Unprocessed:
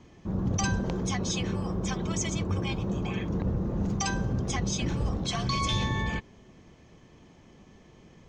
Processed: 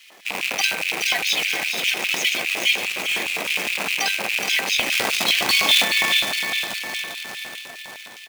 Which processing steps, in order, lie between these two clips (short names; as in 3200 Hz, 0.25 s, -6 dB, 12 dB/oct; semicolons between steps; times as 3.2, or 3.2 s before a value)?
rattling part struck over -34 dBFS, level -28 dBFS; 4.92–5.84 low shelf 490 Hz +9.5 dB; feedback echo 0.472 s, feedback 49%, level -9 dB; 0.76–1.72 frequency shift -31 Hz; graphic EQ 125/250/500/1000/2000/4000/8000 Hz +4/+10/+4/-10/+11/+10/-5 dB; on a send: split-band echo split 820 Hz, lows 0.588 s, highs 0.421 s, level -7.5 dB; on the sum: companded quantiser 4-bit; LFO high-pass square 4.9 Hz 720–2600 Hz; 2.79–3.46 hard clip -19.5 dBFS, distortion -24 dB; gain +1.5 dB